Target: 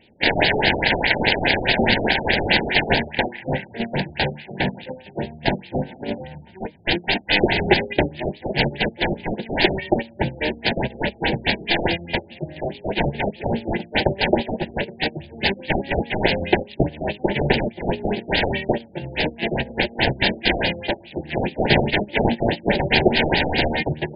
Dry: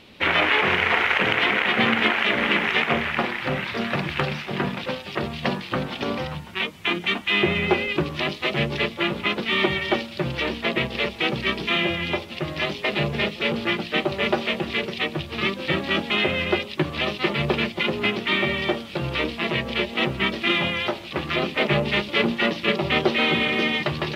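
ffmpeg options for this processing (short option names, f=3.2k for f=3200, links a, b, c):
-af "agate=range=-17dB:threshold=-23dB:ratio=16:detection=peak,acontrast=60,aeval=exprs='0.668*(cos(1*acos(clip(val(0)/0.668,-1,1)))-cos(1*PI/2))+0.0106*(cos(5*acos(clip(val(0)/0.668,-1,1)))-cos(5*PI/2))+0.00668*(cos(6*acos(clip(val(0)/0.668,-1,1)))-cos(6*PI/2))+0.335*(cos(7*acos(clip(val(0)/0.668,-1,1)))-cos(7*PI/2))':c=same,asuperstop=centerf=1200:order=8:qfactor=2,afftfilt=real='re*lt(b*sr/1024,750*pow(5100/750,0.5+0.5*sin(2*PI*4.8*pts/sr)))':imag='im*lt(b*sr/1024,750*pow(5100/750,0.5+0.5*sin(2*PI*4.8*pts/sr)))':win_size=1024:overlap=0.75,volume=-2dB"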